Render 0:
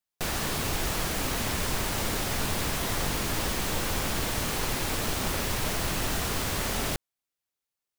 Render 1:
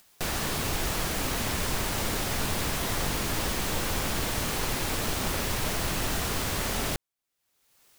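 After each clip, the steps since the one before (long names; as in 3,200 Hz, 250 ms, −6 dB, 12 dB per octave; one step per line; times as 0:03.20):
upward compression, threshold −38 dBFS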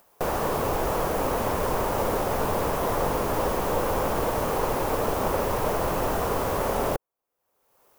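octave-band graphic EQ 500/1,000/2,000/4,000/8,000 Hz +11/+8/−4/−8/−6 dB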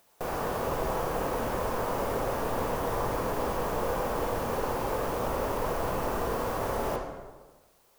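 convolution reverb RT60 1.3 s, pre-delay 13 ms, DRR 0 dB
bit-depth reduction 10 bits, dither triangular
level −7.5 dB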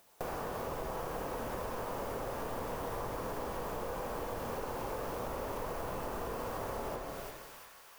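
delay with a high-pass on its return 346 ms, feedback 60%, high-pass 2,000 Hz, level −7.5 dB
downward compressor 5 to 1, threshold −36 dBFS, peak gain reduction 9.5 dB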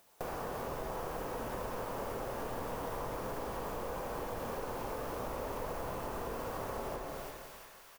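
repeating echo 197 ms, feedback 45%, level −12 dB
level −1 dB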